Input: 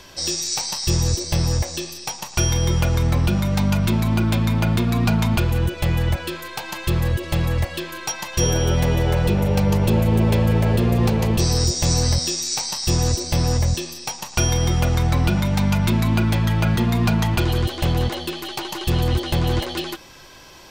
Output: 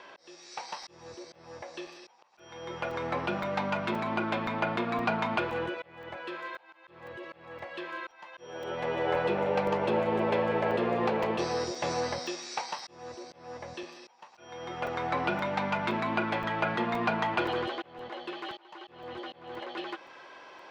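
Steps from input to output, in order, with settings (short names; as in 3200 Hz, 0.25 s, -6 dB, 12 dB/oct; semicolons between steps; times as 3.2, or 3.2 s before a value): auto swell 0.791 s; BPF 470–2000 Hz; crackling interface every 0.52 s, samples 128, zero, from 0.83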